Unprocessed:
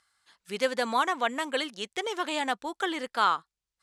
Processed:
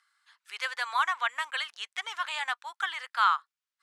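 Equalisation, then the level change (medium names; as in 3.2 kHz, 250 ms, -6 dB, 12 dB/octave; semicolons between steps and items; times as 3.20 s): high-pass 1.1 kHz 24 dB/octave; treble shelf 3.2 kHz -11 dB; +4.5 dB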